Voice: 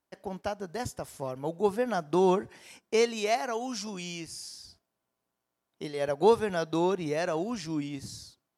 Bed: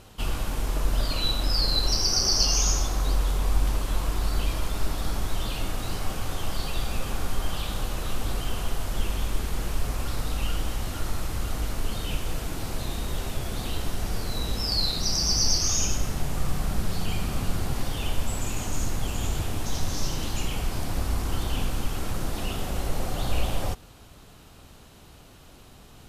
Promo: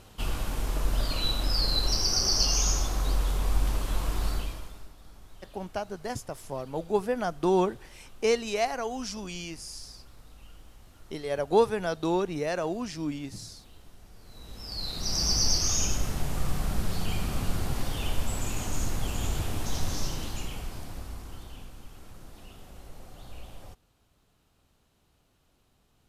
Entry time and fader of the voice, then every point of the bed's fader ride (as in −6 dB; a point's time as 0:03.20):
5.30 s, 0.0 dB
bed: 0:04.30 −2.5 dB
0:04.94 −23 dB
0:14.15 −23 dB
0:15.21 −2 dB
0:19.92 −2 dB
0:21.74 −18.5 dB